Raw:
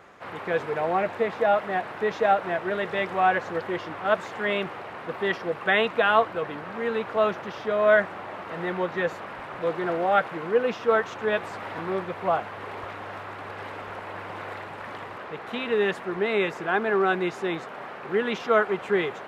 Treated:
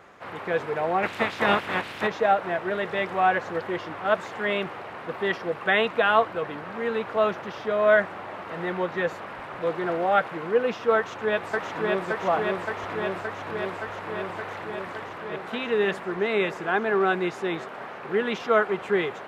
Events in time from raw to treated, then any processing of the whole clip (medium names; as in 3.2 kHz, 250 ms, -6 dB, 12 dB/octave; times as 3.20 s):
1.02–2.06 s: spectral peaks clipped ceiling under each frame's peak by 21 dB
10.96–12.07 s: echo throw 570 ms, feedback 80%, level -2 dB